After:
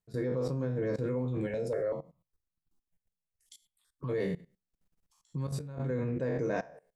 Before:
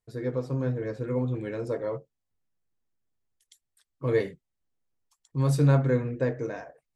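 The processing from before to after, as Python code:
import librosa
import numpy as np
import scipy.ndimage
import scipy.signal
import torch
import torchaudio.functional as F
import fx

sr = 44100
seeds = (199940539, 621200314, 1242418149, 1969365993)

y = fx.spec_trails(x, sr, decay_s=0.33)
y = fx.peak_eq(y, sr, hz=180.0, db=11.5, octaves=0.41)
y = fx.level_steps(y, sr, step_db=19)
y = fx.dynamic_eq(y, sr, hz=520.0, q=1.1, threshold_db=-43.0, ratio=4.0, max_db=3)
y = fx.over_compress(y, sr, threshold_db=-28.0, ratio=-0.5)
y = fx.phaser_held(y, sr, hz=5.2, low_hz=310.0, high_hz=2100.0, at=(1.46, 4.08), fade=0.02)
y = F.gain(torch.from_numpy(y), 1.5).numpy()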